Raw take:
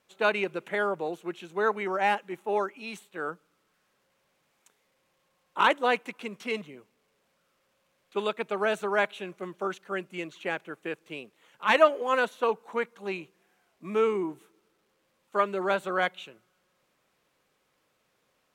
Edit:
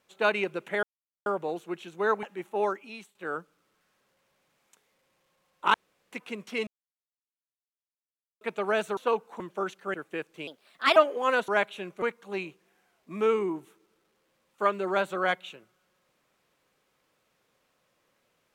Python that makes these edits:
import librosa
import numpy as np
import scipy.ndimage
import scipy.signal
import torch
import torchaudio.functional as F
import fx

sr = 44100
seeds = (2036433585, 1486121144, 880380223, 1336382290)

y = fx.edit(x, sr, fx.insert_silence(at_s=0.83, length_s=0.43),
    fx.cut(start_s=1.8, length_s=0.36),
    fx.fade_out_to(start_s=2.71, length_s=0.37, floor_db=-15.5),
    fx.room_tone_fill(start_s=5.67, length_s=0.38),
    fx.silence(start_s=6.6, length_s=1.74),
    fx.swap(start_s=8.9, length_s=0.54, other_s=12.33, other_length_s=0.43),
    fx.cut(start_s=9.98, length_s=0.68),
    fx.speed_span(start_s=11.19, length_s=0.62, speed=1.26), tone=tone)